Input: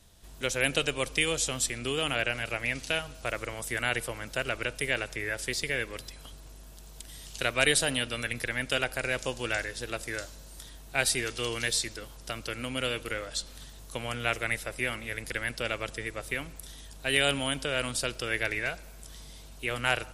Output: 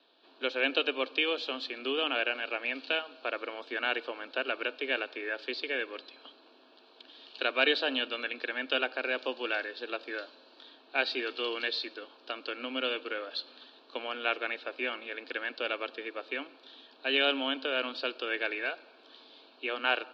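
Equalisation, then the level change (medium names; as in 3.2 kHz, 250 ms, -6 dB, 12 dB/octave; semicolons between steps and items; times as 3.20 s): Chebyshev band-pass 260–4400 Hz, order 5; Butterworth band-stop 2 kHz, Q 5.4; 0.0 dB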